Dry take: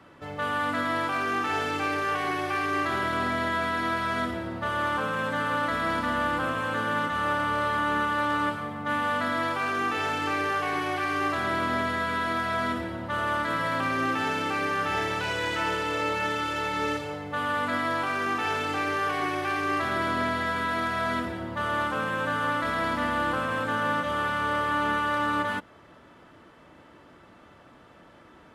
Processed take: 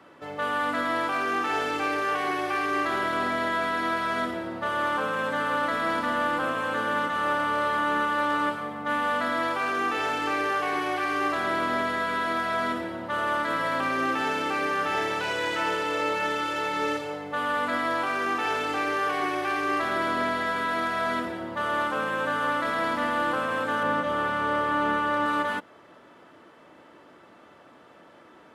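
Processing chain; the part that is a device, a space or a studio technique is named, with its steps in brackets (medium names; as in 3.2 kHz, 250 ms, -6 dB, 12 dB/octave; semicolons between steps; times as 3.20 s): 23.83–25.26 s: tilt EQ -1.5 dB/octave; filter by subtraction (in parallel: low-pass 410 Hz 12 dB/octave + polarity flip)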